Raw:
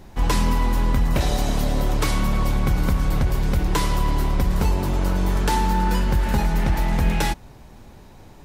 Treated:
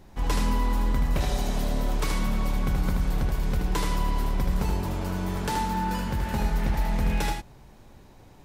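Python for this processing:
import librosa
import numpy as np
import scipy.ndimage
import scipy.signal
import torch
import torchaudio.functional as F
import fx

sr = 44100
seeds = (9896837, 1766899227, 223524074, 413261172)

y = x + 10.0 ** (-4.5 / 20.0) * np.pad(x, (int(77 * sr / 1000.0), 0))[:len(x)]
y = F.gain(torch.from_numpy(y), -7.0).numpy()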